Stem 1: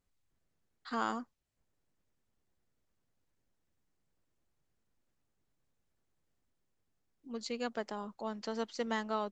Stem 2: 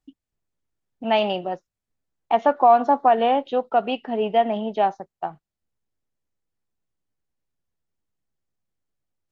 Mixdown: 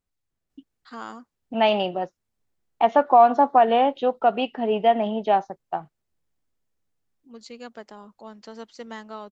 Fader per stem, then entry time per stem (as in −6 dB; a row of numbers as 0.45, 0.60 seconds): −2.5, +0.5 decibels; 0.00, 0.50 seconds